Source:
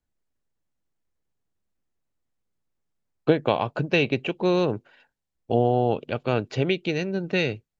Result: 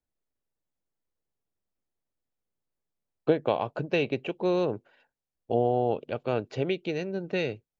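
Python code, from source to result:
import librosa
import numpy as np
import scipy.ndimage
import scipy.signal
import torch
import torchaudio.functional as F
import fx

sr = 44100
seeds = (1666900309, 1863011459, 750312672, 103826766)

y = fx.peak_eq(x, sr, hz=540.0, db=5.5, octaves=1.8)
y = y * librosa.db_to_amplitude(-8.0)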